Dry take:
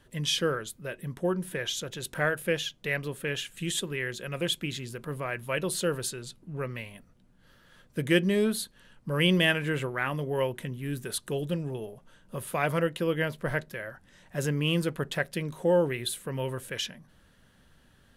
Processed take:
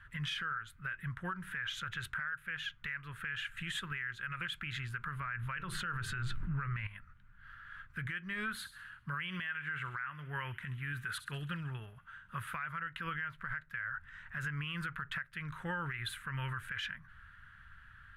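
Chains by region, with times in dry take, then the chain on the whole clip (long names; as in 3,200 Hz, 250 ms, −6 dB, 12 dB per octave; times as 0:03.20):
0:05.21–0:06.87: spectral tilt −1.5 dB per octave + mains-hum notches 50/100/150/200/250/300/350/400/450 Hz + envelope flattener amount 70%
0:08.54–0:12.52: high-pass filter 89 Hz 6 dB per octave + delay with a high-pass on its return 66 ms, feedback 49%, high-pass 3,600 Hz, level −11 dB
whole clip: drawn EQ curve 100 Hz 0 dB, 260 Hz −21 dB, 520 Hz −26 dB, 750 Hz −18 dB, 1,400 Hz +10 dB, 5,400 Hz −19 dB; downward compressor 16 to 1, threshold −35 dBFS; brickwall limiter −33.5 dBFS; level +4.5 dB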